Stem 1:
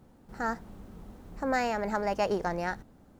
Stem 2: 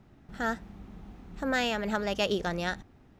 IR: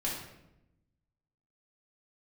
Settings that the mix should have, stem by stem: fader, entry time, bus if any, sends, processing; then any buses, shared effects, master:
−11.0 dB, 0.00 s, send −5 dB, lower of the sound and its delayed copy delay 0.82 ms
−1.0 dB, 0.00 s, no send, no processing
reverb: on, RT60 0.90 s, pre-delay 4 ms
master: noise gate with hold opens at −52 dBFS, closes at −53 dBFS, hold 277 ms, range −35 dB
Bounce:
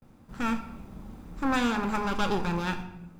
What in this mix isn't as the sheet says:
stem 1 −11.0 dB → −2.5 dB
stem 2 −1.0 dB → −8.0 dB

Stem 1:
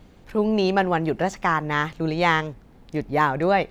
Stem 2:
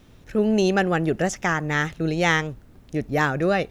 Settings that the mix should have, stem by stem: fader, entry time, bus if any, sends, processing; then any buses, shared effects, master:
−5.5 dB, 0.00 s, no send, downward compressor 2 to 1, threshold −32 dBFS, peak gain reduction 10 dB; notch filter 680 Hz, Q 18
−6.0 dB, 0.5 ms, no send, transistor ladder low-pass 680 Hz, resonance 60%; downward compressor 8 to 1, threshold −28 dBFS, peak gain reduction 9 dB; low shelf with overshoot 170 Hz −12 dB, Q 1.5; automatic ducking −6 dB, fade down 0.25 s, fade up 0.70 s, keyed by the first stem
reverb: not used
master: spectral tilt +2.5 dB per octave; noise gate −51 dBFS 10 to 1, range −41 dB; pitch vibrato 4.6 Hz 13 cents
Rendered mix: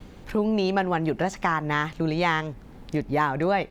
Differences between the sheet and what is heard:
stem 1 −5.5 dB → +5.5 dB
master: missing spectral tilt +2.5 dB per octave

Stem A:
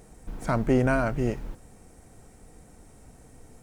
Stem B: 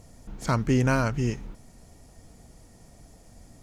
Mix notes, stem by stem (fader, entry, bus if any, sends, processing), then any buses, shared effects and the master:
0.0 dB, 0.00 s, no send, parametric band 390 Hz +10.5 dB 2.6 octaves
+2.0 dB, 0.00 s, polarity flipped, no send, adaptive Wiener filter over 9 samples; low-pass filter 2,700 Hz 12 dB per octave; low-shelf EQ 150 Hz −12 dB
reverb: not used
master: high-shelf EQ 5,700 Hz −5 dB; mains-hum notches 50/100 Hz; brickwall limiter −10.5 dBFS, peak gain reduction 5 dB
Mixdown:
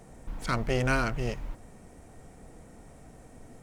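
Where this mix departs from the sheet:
stem A: missing parametric band 390 Hz +10.5 dB 2.6 octaves
stem B: missing low-pass filter 2,700 Hz 12 dB per octave

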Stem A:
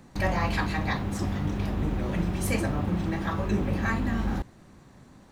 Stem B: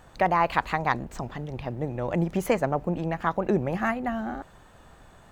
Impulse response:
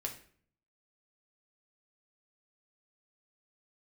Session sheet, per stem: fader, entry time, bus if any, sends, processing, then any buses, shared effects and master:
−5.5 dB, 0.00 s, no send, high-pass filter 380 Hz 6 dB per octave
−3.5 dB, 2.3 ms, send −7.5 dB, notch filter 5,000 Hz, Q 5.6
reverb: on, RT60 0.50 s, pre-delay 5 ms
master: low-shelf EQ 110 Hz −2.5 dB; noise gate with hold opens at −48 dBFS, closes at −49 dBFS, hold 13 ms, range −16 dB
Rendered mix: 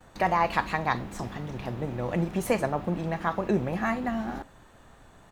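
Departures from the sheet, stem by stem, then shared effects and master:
stem B: send −7.5 dB → −13.5 dB
master: missing low-shelf EQ 110 Hz −2.5 dB

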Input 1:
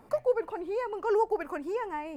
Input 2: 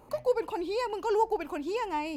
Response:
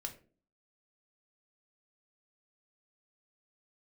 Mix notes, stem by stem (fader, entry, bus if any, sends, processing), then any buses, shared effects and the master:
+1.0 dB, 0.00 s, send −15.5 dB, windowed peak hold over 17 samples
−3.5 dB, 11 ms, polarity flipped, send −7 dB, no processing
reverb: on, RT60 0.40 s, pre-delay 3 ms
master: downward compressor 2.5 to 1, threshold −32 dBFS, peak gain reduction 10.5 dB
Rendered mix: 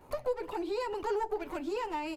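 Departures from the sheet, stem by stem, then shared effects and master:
stem 1 +1.0 dB → −5.5 dB
stem 2: polarity flipped

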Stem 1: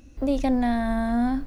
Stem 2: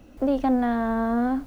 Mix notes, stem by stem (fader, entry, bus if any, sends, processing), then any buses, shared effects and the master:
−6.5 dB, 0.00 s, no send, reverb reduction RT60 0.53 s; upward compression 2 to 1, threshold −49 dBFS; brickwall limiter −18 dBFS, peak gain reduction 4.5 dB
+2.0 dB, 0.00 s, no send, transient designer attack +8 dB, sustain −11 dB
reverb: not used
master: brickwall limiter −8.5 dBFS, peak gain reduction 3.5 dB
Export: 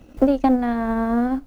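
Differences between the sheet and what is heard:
stem 1 −6.5 dB → −13.5 dB
master: missing brickwall limiter −8.5 dBFS, peak gain reduction 3.5 dB

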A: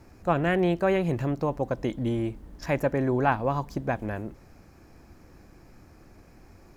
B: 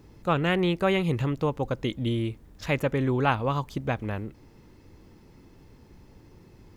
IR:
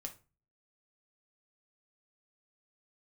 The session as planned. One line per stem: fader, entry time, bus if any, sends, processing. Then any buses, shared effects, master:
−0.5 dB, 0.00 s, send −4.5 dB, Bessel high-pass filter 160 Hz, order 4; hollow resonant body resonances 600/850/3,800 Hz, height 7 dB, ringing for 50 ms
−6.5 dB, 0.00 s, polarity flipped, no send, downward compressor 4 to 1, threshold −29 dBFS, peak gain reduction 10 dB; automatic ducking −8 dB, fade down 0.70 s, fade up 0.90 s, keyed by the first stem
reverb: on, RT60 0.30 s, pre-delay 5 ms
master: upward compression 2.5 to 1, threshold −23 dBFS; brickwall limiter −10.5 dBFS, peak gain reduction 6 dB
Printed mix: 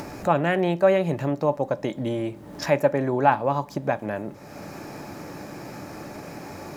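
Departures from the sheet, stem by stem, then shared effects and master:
stem B −6.5 dB → −13.5 dB
master: missing brickwall limiter −10.5 dBFS, peak gain reduction 6 dB

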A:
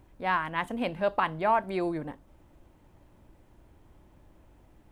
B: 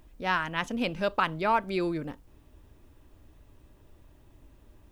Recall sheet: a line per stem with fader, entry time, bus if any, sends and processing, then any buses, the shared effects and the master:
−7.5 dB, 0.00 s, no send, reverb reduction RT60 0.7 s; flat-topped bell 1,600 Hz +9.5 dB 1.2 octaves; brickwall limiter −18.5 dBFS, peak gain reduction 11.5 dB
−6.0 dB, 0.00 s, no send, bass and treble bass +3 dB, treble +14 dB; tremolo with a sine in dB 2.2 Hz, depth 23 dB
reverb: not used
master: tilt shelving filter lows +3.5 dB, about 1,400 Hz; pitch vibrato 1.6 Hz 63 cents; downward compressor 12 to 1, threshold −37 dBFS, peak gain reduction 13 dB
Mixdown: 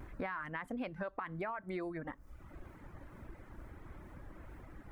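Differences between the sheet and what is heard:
stem A −7.5 dB → +4.5 dB
stem B −6.0 dB → −14.5 dB

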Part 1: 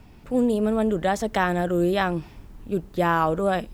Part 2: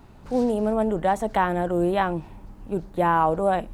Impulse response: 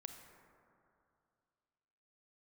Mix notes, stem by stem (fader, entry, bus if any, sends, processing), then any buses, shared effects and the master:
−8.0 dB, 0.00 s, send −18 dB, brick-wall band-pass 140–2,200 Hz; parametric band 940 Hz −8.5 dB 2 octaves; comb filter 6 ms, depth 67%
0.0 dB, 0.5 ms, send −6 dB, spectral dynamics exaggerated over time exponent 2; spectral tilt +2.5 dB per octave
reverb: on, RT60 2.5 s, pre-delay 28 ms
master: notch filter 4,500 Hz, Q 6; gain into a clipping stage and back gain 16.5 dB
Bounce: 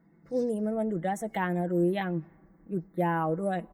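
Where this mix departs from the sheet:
stem 2 0.0 dB → −7.5 dB
reverb return −9.5 dB

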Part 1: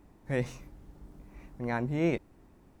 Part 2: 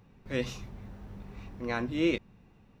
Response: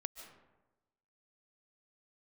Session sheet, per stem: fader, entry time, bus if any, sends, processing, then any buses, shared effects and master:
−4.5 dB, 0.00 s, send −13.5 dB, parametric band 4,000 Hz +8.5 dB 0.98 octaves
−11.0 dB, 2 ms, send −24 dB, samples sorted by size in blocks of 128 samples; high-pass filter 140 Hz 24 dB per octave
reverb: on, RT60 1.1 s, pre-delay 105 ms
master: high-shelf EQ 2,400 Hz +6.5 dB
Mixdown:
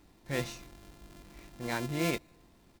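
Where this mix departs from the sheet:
stem 1: send −13.5 dB → −23 dB
stem 2: polarity flipped

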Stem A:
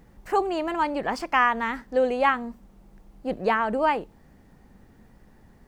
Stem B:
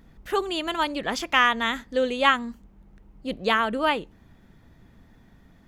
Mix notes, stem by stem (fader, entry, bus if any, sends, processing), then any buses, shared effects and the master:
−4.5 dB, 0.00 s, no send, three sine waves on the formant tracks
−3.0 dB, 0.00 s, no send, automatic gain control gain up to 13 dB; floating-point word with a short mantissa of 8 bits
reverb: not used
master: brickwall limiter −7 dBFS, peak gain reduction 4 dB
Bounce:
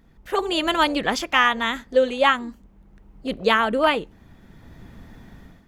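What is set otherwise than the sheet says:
stem B: polarity flipped
master: missing brickwall limiter −7 dBFS, peak gain reduction 4 dB

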